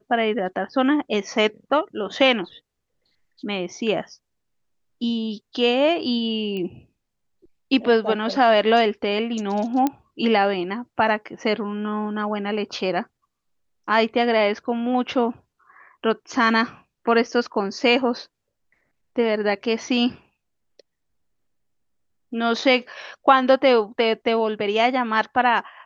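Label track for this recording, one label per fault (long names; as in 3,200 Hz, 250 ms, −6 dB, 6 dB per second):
6.570000	6.570000	click −20 dBFS
9.870000	9.870000	click −9 dBFS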